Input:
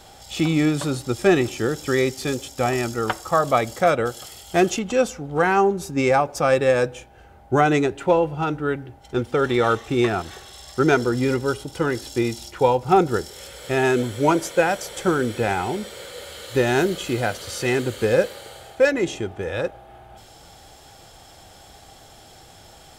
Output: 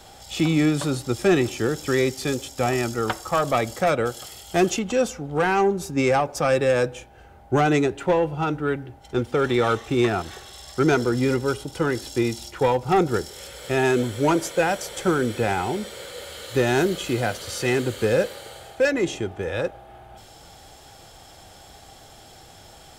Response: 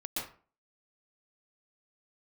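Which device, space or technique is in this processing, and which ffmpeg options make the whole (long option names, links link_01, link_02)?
one-band saturation: -filter_complex "[0:a]acrossover=split=310|2900[link_01][link_02][link_03];[link_02]asoftclip=type=tanh:threshold=-15dB[link_04];[link_01][link_04][link_03]amix=inputs=3:normalize=0"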